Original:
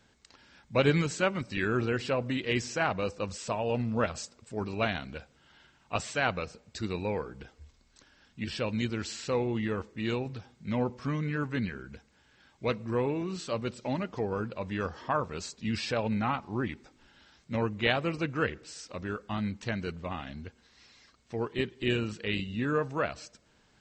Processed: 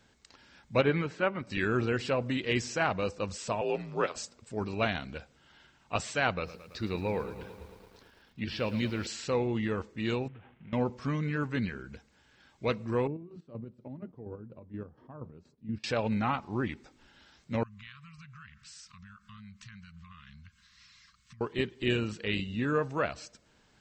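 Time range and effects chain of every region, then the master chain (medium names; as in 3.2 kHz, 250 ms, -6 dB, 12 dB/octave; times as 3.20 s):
0.81–1.47 s: low-pass 2.2 kHz + bass shelf 190 Hz -8 dB
3.61–4.16 s: high-pass 290 Hz 24 dB/octave + frequency shift -68 Hz
6.34–9.07 s: low-pass 5.2 kHz 24 dB/octave + bit-crushed delay 111 ms, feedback 80%, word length 9-bit, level -14 dB
10.28–10.73 s: CVSD coder 16 kbps + compression 5:1, threshold -47 dBFS
13.07–15.84 s: band-stop 190 Hz, Q 5.2 + square tremolo 4.2 Hz, depth 60%, duty 40% + band-pass filter 170 Hz, Q 1.1
17.63–21.41 s: compression 4:1, threshold -47 dBFS + brick-wall FIR band-stop 220–1000 Hz + tape noise reduction on one side only encoder only
whole clip: none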